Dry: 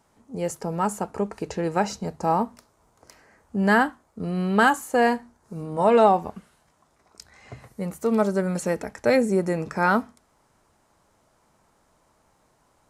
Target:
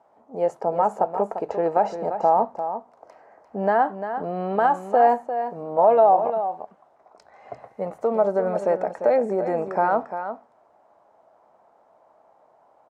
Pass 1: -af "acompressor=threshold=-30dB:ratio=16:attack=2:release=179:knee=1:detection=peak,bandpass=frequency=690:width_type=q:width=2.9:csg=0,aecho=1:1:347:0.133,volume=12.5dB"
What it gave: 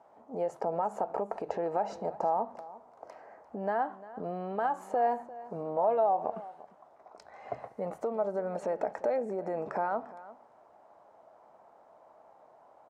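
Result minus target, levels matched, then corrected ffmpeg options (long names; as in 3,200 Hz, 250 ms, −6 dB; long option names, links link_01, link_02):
downward compressor: peak gain reduction +11 dB; echo-to-direct −8 dB
-af "acompressor=threshold=-18.5dB:ratio=16:attack=2:release=179:knee=1:detection=peak,bandpass=frequency=690:width_type=q:width=2.9:csg=0,aecho=1:1:347:0.335,volume=12.5dB"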